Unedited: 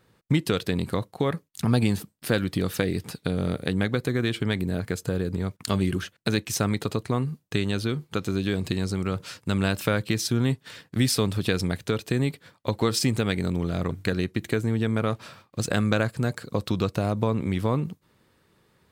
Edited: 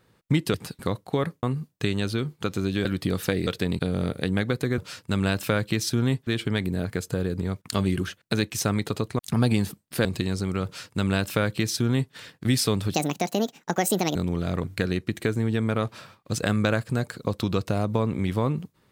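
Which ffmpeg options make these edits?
-filter_complex "[0:a]asplit=13[s0][s1][s2][s3][s4][s5][s6][s7][s8][s9][s10][s11][s12];[s0]atrim=end=0.542[s13];[s1]atrim=start=2.978:end=3.232[s14];[s2]atrim=start=0.858:end=1.502[s15];[s3]atrim=start=7.138:end=8.562[s16];[s4]atrim=start=2.358:end=2.982[s17];[s5]atrim=start=0.538:end=0.862[s18];[s6]atrim=start=3.228:end=4.222[s19];[s7]atrim=start=9.158:end=10.652[s20];[s8]atrim=start=4.218:end=7.142[s21];[s9]atrim=start=1.498:end=2.362[s22];[s10]atrim=start=8.558:end=11.454[s23];[s11]atrim=start=11.45:end=13.43,asetpts=PTS-STARTPTS,asetrate=71883,aresample=44100,atrim=end_sample=53569,asetpts=PTS-STARTPTS[s24];[s12]atrim=start=13.426[s25];[s13][s14]acrossfade=d=0.004:c1=hsin:c2=hsin[s26];[s26][s15]acrossfade=d=0.004:c1=hsin:c2=hsin[s27];[s27][s16]acrossfade=d=0.004:c1=hsin:c2=hsin[s28];[s28][s17]acrossfade=d=0.004:c1=hsin:c2=hsin[s29];[s29][s18]acrossfade=d=0.004:c1=hsin:c2=hsin[s30];[s30][s19]acrossfade=d=0.004:c1=hsin:c2=hsin[s31];[s31][s20]acrossfade=d=0.004:c1=hsin:c2=hsin[s32];[s32][s21]acrossfade=d=0.004:c1=hsin:c2=hsin[s33];[s33][s22]acrossfade=d=0.004:c1=hsin:c2=hsin[s34];[s34][s23]acrossfade=d=0.004:c1=hsin:c2=hsin[s35];[s35][s24]acrossfade=d=0.004:c1=hsin:c2=hsin[s36];[s36][s25]acrossfade=d=0.004:c1=hsin:c2=hsin"

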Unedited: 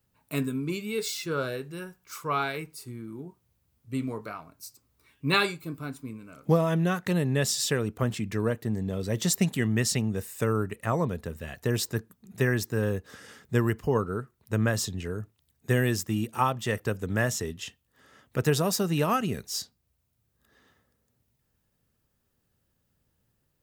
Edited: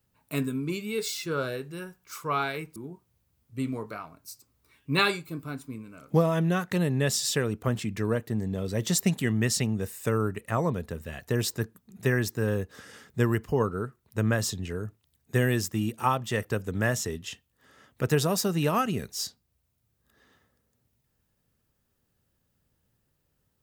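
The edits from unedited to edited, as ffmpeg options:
-filter_complex "[0:a]asplit=2[s0][s1];[s0]atrim=end=2.762[s2];[s1]atrim=start=3.108[s3];[s2][s3]acrossfade=d=0.004:c1=hsin:c2=hsin"

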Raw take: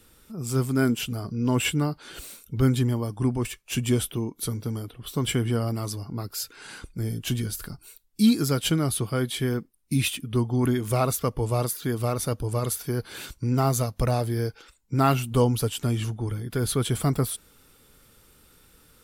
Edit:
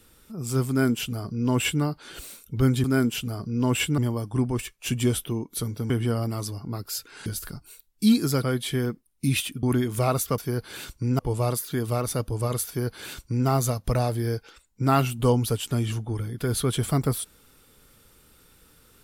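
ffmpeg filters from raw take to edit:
-filter_complex "[0:a]asplit=9[s0][s1][s2][s3][s4][s5][s6][s7][s8];[s0]atrim=end=2.842[s9];[s1]atrim=start=0.688:end=1.832[s10];[s2]atrim=start=2.838:end=4.762[s11];[s3]atrim=start=5.348:end=6.712[s12];[s4]atrim=start=7.428:end=8.602[s13];[s5]atrim=start=9.108:end=10.312[s14];[s6]atrim=start=10.558:end=11.312[s15];[s7]atrim=start=12.788:end=13.602[s16];[s8]atrim=start=11.308[s17];[s9][s10]acrossfade=d=0.004:c1=hsin:c2=hsin[s18];[s18][s11]acrossfade=d=0.004:c1=hsin:c2=hsin[s19];[s19][s12]acrossfade=d=0.004:c1=hsin:c2=hsin[s20];[s20][s13]acrossfade=d=0.004:c1=hsin:c2=hsin[s21];[s21][s14]acrossfade=d=0.004:c1=hsin:c2=hsin[s22];[s22][s15]acrossfade=d=0.004:c1=hsin:c2=hsin[s23];[s23][s16]acrossfade=d=0.004:c1=hsin:c2=hsin[s24];[s24][s17]acrossfade=d=0.004:c1=hsin:c2=hsin"

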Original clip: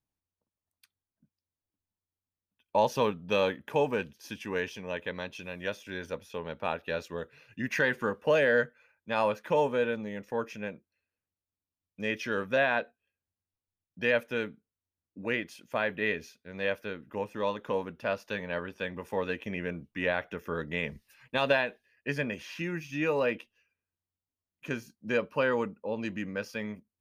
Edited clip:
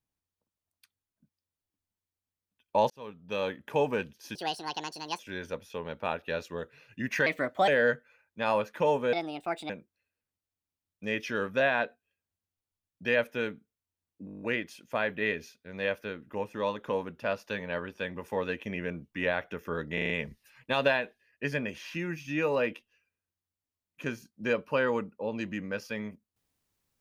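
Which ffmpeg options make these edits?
-filter_complex "[0:a]asplit=20[s0][s1][s2][s3][s4][s5][s6][s7][s8][s9][s10][s11][s12][s13][s14][s15][s16][s17][s18][s19];[s0]atrim=end=2.9,asetpts=PTS-STARTPTS,afade=t=out:st=2.896:d=0.004:c=hsin[s20];[s1]atrim=start=2.9:end=4.354,asetpts=PTS-STARTPTS,afade=t=in:d=0.9[s21];[s2]atrim=start=4.35:end=5.79,asetpts=PTS-STARTPTS,asetrate=75411,aresample=44100[s22];[s3]atrim=start=5.786:end=7.864[s23];[s4]atrim=start=7.86:end=8.38,asetpts=PTS-STARTPTS,asetrate=55125,aresample=44100[s24];[s5]atrim=start=8.376:end=9.834[s25];[s6]atrim=start=9.83:end=10.66,asetpts=PTS-STARTPTS,asetrate=64386,aresample=44100[s26];[s7]atrim=start=10.656:end=15.242[s27];[s8]atrim=start=15.218:end=15.242[s28];[s9]atrim=start=15.218:end=15.242[s29];[s10]atrim=start=15.218:end=15.242[s30];[s11]atrim=start=15.218:end=15.242[s31];[s12]atrim=start=15.218:end=15.242[s32];[s13]atrim=start=15.218:end=15.242[s33];[s14]atrim=start=15.218:end=15.242[s34];[s15]atrim=start=15.218:end=20.782[s35];[s16]atrim=start=20.738:end=20.782[s36];[s17]atrim=start=20.738:end=20.782[s37];[s18]atrim=start=20.738:end=20.782[s38];[s19]atrim=start=20.738[s39];[s20][s21]concat=n=2:v=0:a=1[s40];[s40][s22]acrossfade=d=0.004:c1=hsin:c2=hsin[s41];[s41][s23]acrossfade=d=0.004:c1=hsin:c2=hsin[s42];[s42][s24]acrossfade=d=0.004:c1=hsin:c2=hsin[s43];[s43][s25]acrossfade=d=0.004:c1=hsin:c2=hsin[s44];[s44][s26]acrossfade=d=0.004:c1=hsin:c2=hsin[s45];[s45][s27]acrossfade=d=0.004:c1=hsin:c2=hsin[s46];[s46][s28]acrossfade=d=0.004:c1=hsin:c2=hsin[s47];[s47][s29]acrossfade=d=0.004:c1=hsin:c2=hsin[s48];[s48][s30]acrossfade=d=0.004:c1=hsin:c2=hsin[s49];[s49][s31]acrossfade=d=0.004:c1=hsin:c2=hsin[s50];[s50][s32]acrossfade=d=0.004:c1=hsin:c2=hsin[s51];[s51][s33]acrossfade=d=0.004:c1=hsin:c2=hsin[s52];[s52][s34]acrossfade=d=0.004:c1=hsin:c2=hsin[s53];[s53][s35]acrossfade=d=0.004:c1=hsin:c2=hsin[s54];[s54][s36]acrossfade=d=0.004:c1=hsin:c2=hsin[s55];[s55][s37]acrossfade=d=0.004:c1=hsin:c2=hsin[s56];[s56][s38]acrossfade=d=0.004:c1=hsin:c2=hsin[s57];[s57][s39]acrossfade=d=0.004:c1=hsin:c2=hsin"

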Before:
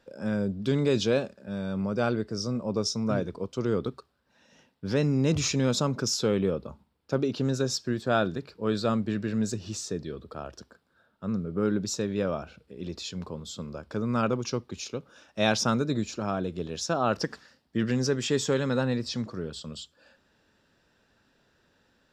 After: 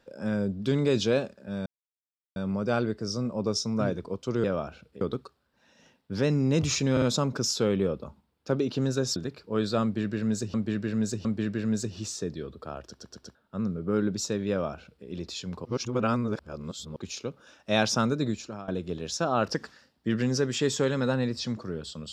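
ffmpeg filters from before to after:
-filter_complex "[0:a]asplit=16[s0][s1][s2][s3][s4][s5][s6][s7][s8][s9][s10][s11][s12][s13][s14][s15];[s0]atrim=end=1.66,asetpts=PTS-STARTPTS,afade=t=out:st=1.656:d=0.004:c=hsin,apad=pad_dur=0.7[s16];[s1]atrim=start=1.66:end=3.742,asetpts=PTS-STARTPTS,afade=t=in:d=0.004:c=hsin[s17];[s2]atrim=start=12.188:end=12.762[s18];[s3]atrim=start=3.738:end=5.702[s19];[s4]atrim=start=5.648:end=5.702[s20];[s5]atrim=start=5.648:end=7.792[s21];[s6]atrim=start=8.268:end=9.652[s22];[s7]atrim=start=8.938:end=9.652[s23];[s8]atrim=start=8.938:end=10.682[s24];[s9]atrim=start=10.558:end=10.682[s25];[s10]atrim=start=10.558:end=10.682[s26];[s11]atrim=start=10.558:end=10.682[s27];[s12]atrim=start=11.038:end=13.342[s28];[s13]atrim=start=13.338:end=14.652,asetpts=PTS-STARTPTS,areverse[s29];[s14]atrim=start=14.648:end=16.37,asetpts=PTS-STARTPTS,afade=t=out:st=1.312:d=0.41:silence=0.149624[s30];[s15]atrim=start=16.37,asetpts=PTS-STARTPTS,afade=t=in:d=0.004:c=hsin:silence=0.149624[s31];[s16][s17]concat=n=2:v=0:a=1[s32];[s32][s18]acrossfade=d=0.004:c1=hsin:c2=hsin[s33];[s33][s19]acrossfade=d=0.004:c1=hsin:c2=hsin[s34];[s34][s20]acrossfade=d=0.004:c1=hsin:c2=hsin[s35];[s35][s21]acrossfade=d=0.004:c1=hsin:c2=hsin[s36];[s36][s22]acrossfade=d=0.004:c1=hsin:c2=hsin[s37];[s37][s23]acrossfade=d=0.004:c1=hsin:c2=hsin[s38];[s38][s24]acrossfade=d=0.004:c1=hsin:c2=hsin[s39];[s39][s25]acrossfade=d=0.004:c1=hsin:c2=hsin[s40];[s40][s26]acrossfade=d=0.004:c1=hsin:c2=hsin[s41];[s41][s27]acrossfade=d=0.004:c1=hsin:c2=hsin[s42];[s42][s28]acrossfade=d=0.004:c1=hsin:c2=hsin[s43];[s43][s29]acrossfade=d=0.004:c1=hsin:c2=hsin[s44];[s30][s31]concat=n=2:v=0:a=1[s45];[s44][s45]acrossfade=d=0.004:c1=hsin:c2=hsin"

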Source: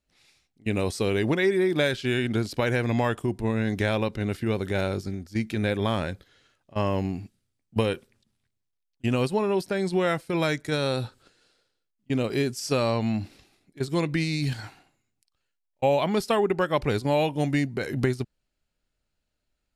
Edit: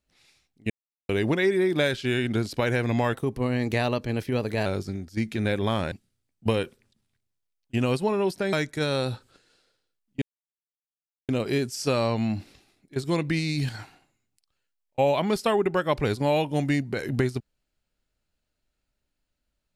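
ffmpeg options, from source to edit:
-filter_complex "[0:a]asplit=8[s0][s1][s2][s3][s4][s5][s6][s7];[s0]atrim=end=0.7,asetpts=PTS-STARTPTS,afade=t=out:st=0.696:d=0.004:c=hsin[s8];[s1]atrim=start=0.7:end=1.09,asetpts=PTS-STARTPTS,volume=0[s9];[s2]atrim=start=1.09:end=3.134,asetpts=PTS-STARTPTS,afade=t=in:d=0.004:c=hsin[s10];[s3]atrim=start=3.13:end=4.84,asetpts=PTS-STARTPTS,asetrate=49392,aresample=44100,atrim=end_sample=67331,asetpts=PTS-STARTPTS[s11];[s4]atrim=start=4.836:end=6.102[s12];[s5]atrim=start=7.218:end=9.832[s13];[s6]atrim=start=10.438:end=12.13,asetpts=PTS-STARTPTS,afade=t=out:st=1.688:d=0.004:c=hsin,apad=pad_dur=1.07[s14];[s7]atrim=start=12.13,asetpts=PTS-STARTPTS,afade=t=in:d=0.004:c=hsin[s15];[s8][s9][s10]concat=n=3:v=0:a=1[s16];[s16][s11]acrossfade=d=0.004:c1=hsin:c2=hsin[s17];[s17][s12]acrossfade=d=0.004:c1=hsin:c2=hsin[s18];[s18][s13]acrossfade=d=0.004:c1=hsin:c2=hsin[s19];[s14][s15]concat=n=2:v=0:a=1[s20];[s19][s20]acrossfade=d=0.004:c1=hsin:c2=hsin"

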